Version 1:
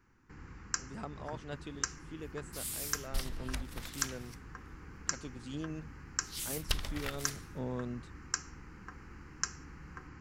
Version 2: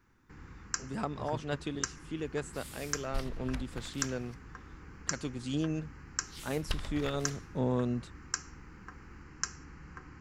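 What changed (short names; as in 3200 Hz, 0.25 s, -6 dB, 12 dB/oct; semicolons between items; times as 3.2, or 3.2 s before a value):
speech +8.0 dB; second sound: add LPF 2500 Hz 6 dB/oct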